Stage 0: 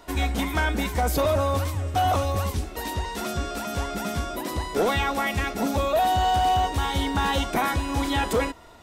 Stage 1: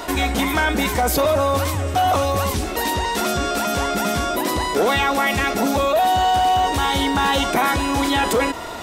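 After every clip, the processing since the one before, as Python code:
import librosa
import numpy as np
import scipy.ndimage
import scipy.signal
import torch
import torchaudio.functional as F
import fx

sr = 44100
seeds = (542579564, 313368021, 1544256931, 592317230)

y = fx.low_shelf(x, sr, hz=120.0, db=-10.5)
y = fx.env_flatten(y, sr, amount_pct=50)
y = y * librosa.db_to_amplitude(4.0)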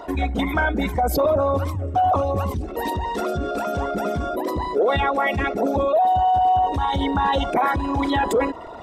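y = fx.envelope_sharpen(x, sr, power=2.0)
y = fx.upward_expand(y, sr, threshold_db=-27.0, expansion=1.5)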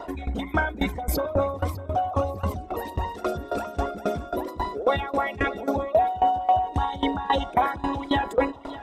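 y = fx.echo_feedback(x, sr, ms=602, feedback_pct=33, wet_db=-13.0)
y = fx.tremolo_decay(y, sr, direction='decaying', hz=3.7, depth_db=19)
y = y * librosa.db_to_amplitude(1.5)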